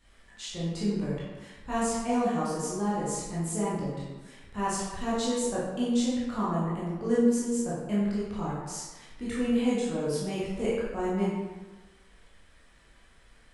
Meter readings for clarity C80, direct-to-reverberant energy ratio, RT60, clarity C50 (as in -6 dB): 1.5 dB, -9.0 dB, 1.2 s, -1.0 dB